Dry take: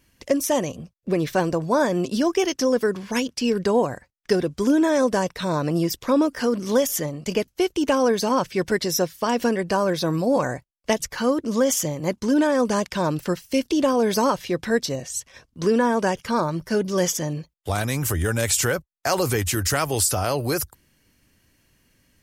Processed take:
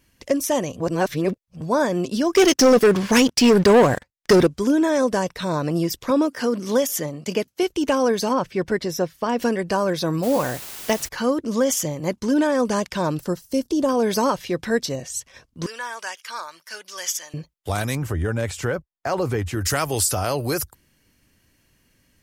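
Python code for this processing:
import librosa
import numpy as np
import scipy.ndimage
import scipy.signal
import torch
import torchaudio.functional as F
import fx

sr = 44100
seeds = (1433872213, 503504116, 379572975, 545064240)

y = fx.leveller(x, sr, passes=3, at=(2.35, 4.47))
y = fx.highpass(y, sr, hz=120.0, slope=12, at=(6.1, 7.63))
y = fx.high_shelf(y, sr, hz=3400.0, db=-10.0, at=(8.33, 9.39))
y = fx.quant_dither(y, sr, seeds[0], bits=6, dither='triangular', at=(10.22, 11.07), fade=0.02)
y = fx.peak_eq(y, sr, hz=2400.0, db=-12.0, octaves=1.3, at=(13.2, 13.89))
y = fx.highpass(y, sr, hz=1500.0, slope=12, at=(15.66, 17.34))
y = fx.lowpass(y, sr, hz=1300.0, slope=6, at=(17.95, 19.61))
y = fx.edit(y, sr, fx.reverse_span(start_s=0.8, length_s=0.81), tone=tone)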